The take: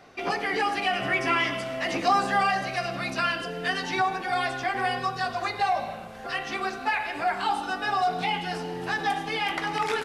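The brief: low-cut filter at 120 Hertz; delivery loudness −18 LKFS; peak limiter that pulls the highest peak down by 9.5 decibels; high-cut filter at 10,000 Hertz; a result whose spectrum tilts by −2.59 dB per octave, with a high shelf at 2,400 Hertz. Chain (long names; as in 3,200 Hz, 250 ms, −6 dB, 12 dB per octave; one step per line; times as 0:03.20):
high-pass filter 120 Hz
low-pass filter 10,000 Hz
high-shelf EQ 2,400 Hz +7.5 dB
level +10.5 dB
brickwall limiter −9.5 dBFS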